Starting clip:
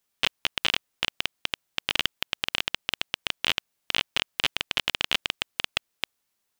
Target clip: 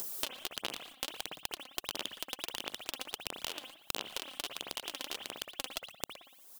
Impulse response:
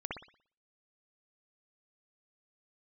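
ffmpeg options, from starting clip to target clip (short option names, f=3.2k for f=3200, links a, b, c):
-filter_complex "[0:a]highpass=270,aecho=1:1:115:0.1,asplit=2[a][b];[1:a]atrim=start_sample=2205[c];[b][c]afir=irnorm=-1:irlink=0,volume=-2dB[d];[a][d]amix=inputs=2:normalize=0,acompressor=mode=upward:threshold=-31dB:ratio=2.5,highshelf=f=8.2k:g=7.5,asplit=2[e][f];[f]acrusher=bits=5:mix=0:aa=0.000001,volume=-8dB[g];[e][g]amix=inputs=2:normalize=0,acompressor=threshold=-31dB:ratio=16,aphaser=in_gain=1:out_gain=1:delay=3.9:decay=0.49:speed=1.5:type=sinusoidal,equalizer=f=2.1k:w=0.77:g=-13,volume=3.5dB"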